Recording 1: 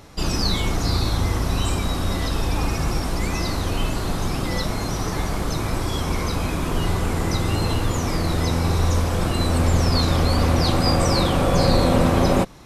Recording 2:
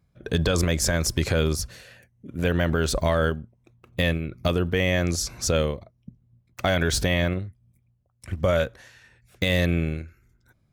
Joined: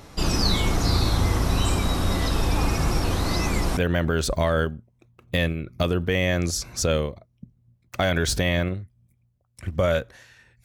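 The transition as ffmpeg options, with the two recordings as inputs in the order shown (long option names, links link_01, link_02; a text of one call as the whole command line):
ffmpeg -i cue0.wav -i cue1.wav -filter_complex "[0:a]apad=whole_dur=10.64,atrim=end=10.64,asplit=2[link_01][link_02];[link_01]atrim=end=3.042[link_03];[link_02]atrim=start=3.038:end=3.772,asetpts=PTS-STARTPTS,areverse[link_04];[1:a]atrim=start=2.418:end=9.29[link_05];[link_03][link_04]acrossfade=duration=0.004:curve1=hsin:curve2=hsin[link_06];[link_06][link_05]acrossfade=duration=0.004:curve1=hsin:curve2=hsin" out.wav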